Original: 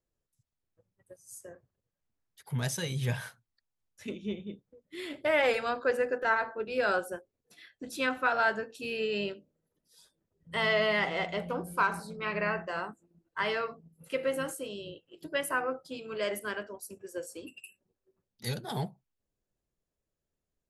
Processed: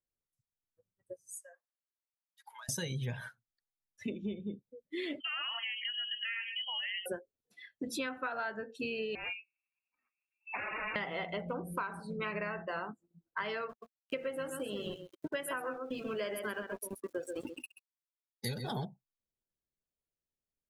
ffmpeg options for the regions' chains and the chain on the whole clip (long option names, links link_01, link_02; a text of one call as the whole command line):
ffmpeg -i in.wav -filter_complex "[0:a]asettb=1/sr,asplit=3[link_01][link_02][link_03];[link_01]atrim=end=1.404[link_04];[link_02]atrim=start=1.4:end=2.69,asetpts=PTS-STARTPTS,afade=type=in:duration=0.004:curve=qsin,afade=type=out:start_time=1.286:duration=0.004:curve=qsin,highpass=frequency=770:width=0.5412,highpass=frequency=770:width=1.3066,acompressor=threshold=-47dB:ratio=16:attack=3.2:release=140:knee=1:detection=peak[link_05];[link_03]atrim=start=2.686[link_06];[link_04][link_05]acrossfade=duration=0.004:curve1=hsin:curve2=qsin[link_07];[link_07][link_06]acrossfade=duration=0.004:curve1=qsin:curve2=hsin,asettb=1/sr,asplit=3[link_08][link_09][link_10];[link_08]atrim=end=5.204[link_11];[link_09]atrim=start=5.2:end=7.06,asetpts=PTS-STARTPTS,afade=type=in:duration=0.004:curve=qsin,afade=type=out:start_time=1.856:duration=0.004:curve=qsin,acompressor=threshold=-39dB:ratio=5:attack=3.2:release=140:knee=1:detection=peak,lowpass=frequency=2900:width_type=q:width=0.5098,lowpass=frequency=2900:width_type=q:width=0.6013,lowpass=frequency=2900:width_type=q:width=0.9,lowpass=frequency=2900:width_type=q:width=2.563,afreqshift=-3400[link_12];[link_10]atrim=start=7.056[link_13];[link_11][link_12]acrossfade=duration=0.004:curve1=hsin:curve2=qsin[link_14];[link_14][link_13]acrossfade=duration=0.004:curve1=qsin:curve2=hsin,asettb=1/sr,asplit=3[link_15][link_16][link_17];[link_15]atrim=end=9.154[link_18];[link_16]atrim=start=9.15:end=10.96,asetpts=PTS-STARTPTS,afade=type=in:duration=0.004:curve=qsin,afade=type=out:start_time=1.806:duration=0.004:curve=qsin,aeval=exprs='0.0211*(abs(mod(val(0)/0.0211+3,4)-2)-1)':channel_layout=same,lowpass=frequency=2400:width_type=q:width=0.5098,lowpass=frequency=2400:width_type=q:width=0.6013,lowpass=frequency=2400:width_type=q:width=0.9,lowpass=frequency=2400:width_type=q:width=2.563,afreqshift=-2800[link_19];[link_17]atrim=start=10.956[link_20];[link_18][link_19]acrossfade=duration=0.004:curve1=hsin:curve2=qsin[link_21];[link_21][link_20]acrossfade=duration=0.004:curve1=qsin:curve2=hsin,asettb=1/sr,asplit=3[link_22][link_23][link_24];[link_22]atrim=end=13.694[link_25];[link_23]atrim=start=13.69:end=18.85,asetpts=PTS-STARTPTS,afade=type=in:duration=0.004:curve=qsin,afade=type=out:start_time=5.156:duration=0.004:curve=qsin,aeval=exprs='val(0)*gte(abs(val(0)),0.00708)':channel_layout=same,aecho=1:1:131:0.398,atrim=end_sample=227556[link_26];[link_24]atrim=start=18.846[link_27];[link_25][link_26]acrossfade=duration=0.004:curve1=hsin:curve2=qsin[link_28];[link_28][link_27]acrossfade=duration=0.004:curve1=qsin:curve2=hsin,afftdn=noise_reduction=18:noise_floor=-46,equalizer=frequency=230:width=4.1:gain=2.5,acompressor=threshold=-40dB:ratio=12,volume=6dB" out.wav